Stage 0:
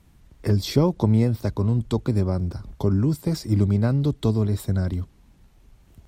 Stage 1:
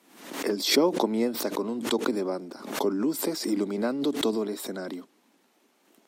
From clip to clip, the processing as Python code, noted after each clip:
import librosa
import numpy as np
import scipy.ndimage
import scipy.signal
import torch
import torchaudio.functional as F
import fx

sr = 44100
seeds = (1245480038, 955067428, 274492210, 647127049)

y = scipy.signal.sosfilt(scipy.signal.butter(6, 250.0, 'highpass', fs=sr, output='sos'), x)
y = fx.pre_swell(y, sr, db_per_s=82.0)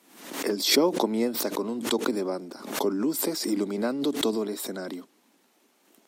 y = fx.high_shelf(x, sr, hz=5100.0, db=4.5)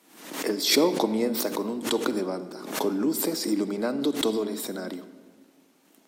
y = fx.room_shoebox(x, sr, seeds[0], volume_m3=1600.0, walls='mixed', distance_m=0.55)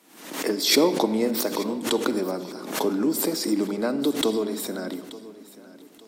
y = fx.echo_feedback(x, sr, ms=881, feedback_pct=33, wet_db=-18)
y = F.gain(torch.from_numpy(y), 2.0).numpy()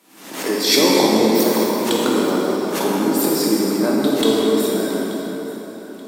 y = fx.rev_plate(x, sr, seeds[1], rt60_s=4.1, hf_ratio=0.6, predelay_ms=0, drr_db=-5.0)
y = F.gain(torch.from_numpy(y), 1.5).numpy()